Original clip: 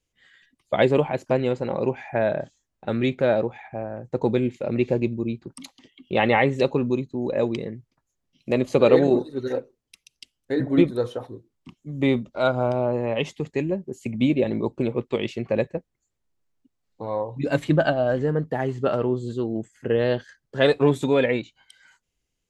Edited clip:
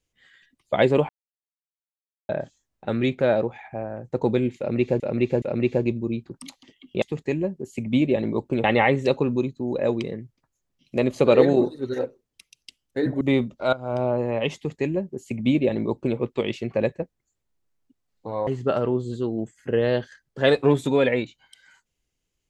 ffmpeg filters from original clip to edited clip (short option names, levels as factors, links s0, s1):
-filter_complex "[0:a]asplit=10[s0][s1][s2][s3][s4][s5][s6][s7][s8][s9];[s0]atrim=end=1.09,asetpts=PTS-STARTPTS,afade=t=out:st=1.086:d=0.004:c=hsin[s10];[s1]atrim=start=1.09:end=2.29,asetpts=PTS-STARTPTS,volume=0[s11];[s2]atrim=start=2.29:end=5.002,asetpts=PTS-STARTPTS,afade=t=in:d=0.004:c=hsin[s12];[s3]atrim=start=4.578:end=5.002[s13];[s4]atrim=start=4.578:end=6.182[s14];[s5]atrim=start=13.298:end=14.922[s15];[s6]atrim=start=6.178:end=10.752[s16];[s7]atrim=start=11.958:end=12.48,asetpts=PTS-STARTPTS,afade=t=out:st=0.518:d=0.004:c=hsin:silence=0.199526[s17];[s8]atrim=start=12.48:end=17.222,asetpts=PTS-STARTPTS,afade=t=in:d=0.26:c=qua:silence=0.199526[s18];[s9]atrim=start=18.638[s19];[s10][s11][s12]concat=n=3:v=0:a=1[s20];[s20][s13]acrossfade=d=0.004:c1=hsin:c2=hsin[s21];[s21][s14]acrossfade=d=0.004:c1=hsin:c2=hsin[s22];[s22][s15]acrossfade=d=0.004:c1=hsin:c2=hsin[s23];[s23][s16]acrossfade=d=0.004:c1=hsin:c2=hsin[s24];[s17][s18]concat=n=2:v=0:a=1[s25];[s24][s25]acrossfade=d=0.004:c1=hsin:c2=hsin[s26];[s26][s19]acrossfade=d=0.004:c1=hsin:c2=hsin"